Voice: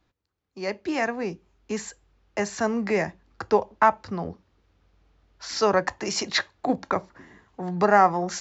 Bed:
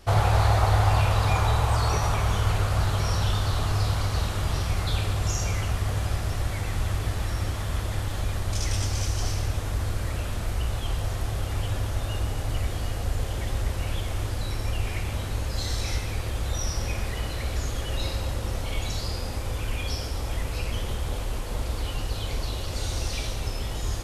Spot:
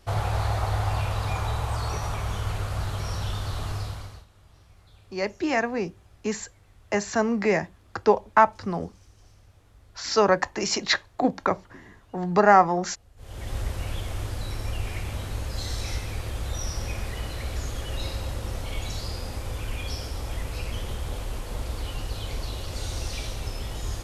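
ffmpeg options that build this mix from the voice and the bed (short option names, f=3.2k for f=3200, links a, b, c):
-filter_complex "[0:a]adelay=4550,volume=1.5dB[a];[1:a]volume=20.5dB,afade=t=out:st=3.7:d=0.55:silence=0.0707946,afade=t=in:st=13.16:d=0.41:silence=0.0501187[b];[a][b]amix=inputs=2:normalize=0"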